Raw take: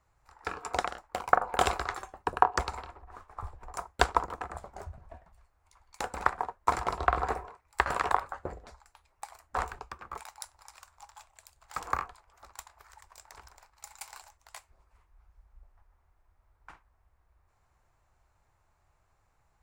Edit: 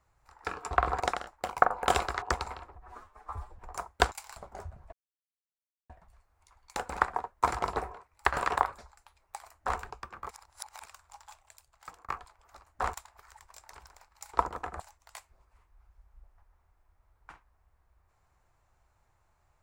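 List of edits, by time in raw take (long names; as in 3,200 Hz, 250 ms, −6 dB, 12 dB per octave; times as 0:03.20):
0:01.93–0:02.49: remove
0:03.03–0:03.58: time-stretch 1.5×
0:04.11–0:04.58: swap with 0:13.95–0:14.20
0:05.14: splice in silence 0.97 s
0:07.01–0:07.30: move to 0:00.71
0:08.32–0:08.67: remove
0:09.41–0:09.68: duplicate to 0:12.55
0:10.19–0:10.74: reverse
0:11.33–0:11.97: fade out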